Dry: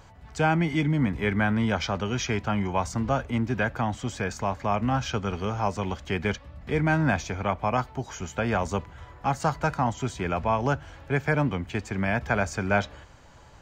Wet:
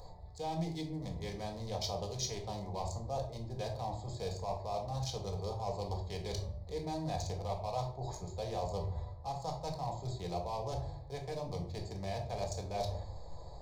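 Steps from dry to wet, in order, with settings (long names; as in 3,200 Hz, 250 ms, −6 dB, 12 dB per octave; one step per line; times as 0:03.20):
adaptive Wiener filter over 15 samples
high shelf with overshoot 3,300 Hz +7 dB, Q 3
mains-hum notches 50/100 Hz
reversed playback
downward compressor 6 to 1, threshold −37 dBFS, peak gain reduction 17 dB
reversed playback
soft clipping −28.5 dBFS, distortion −23 dB
phaser with its sweep stopped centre 600 Hz, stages 4
rectangular room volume 580 cubic metres, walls furnished, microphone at 1.9 metres
level +3 dB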